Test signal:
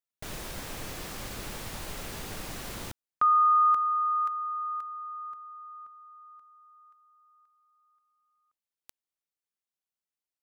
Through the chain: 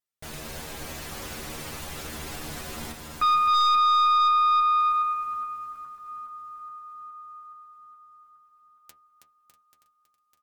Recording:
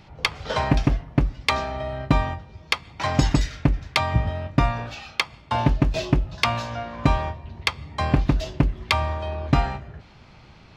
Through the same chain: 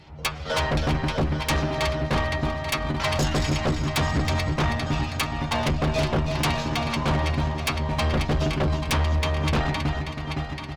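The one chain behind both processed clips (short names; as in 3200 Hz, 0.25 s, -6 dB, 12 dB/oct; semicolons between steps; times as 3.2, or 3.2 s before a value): regenerating reverse delay 0.418 s, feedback 67%, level -8.5 dB; added harmonics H 6 -19 dB, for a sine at -5 dBFS; metallic resonator 75 Hz, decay 0.22 s, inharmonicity 0.002; feedback echo 0.322 s, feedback 34%, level -7.5 dB; sine folder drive 11 dB, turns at -11 dBFS; gain -7 dB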